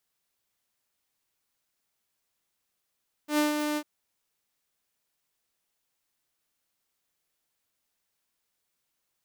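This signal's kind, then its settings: ADSR saw 299 Hz, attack 0.101 s, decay 0.146 s, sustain -6 dB, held 0.49 s, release 61 ms -18.5 dBFS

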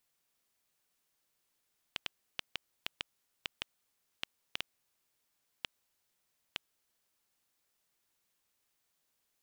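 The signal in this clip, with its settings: random clicks 2.2/s -16 dBFS 5.72 s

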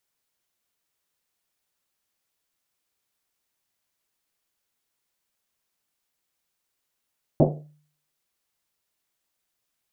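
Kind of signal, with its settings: Risset drum, pitch 150 Hz, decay 0.54 s, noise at 450 Hz, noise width 480 Hz, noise 60%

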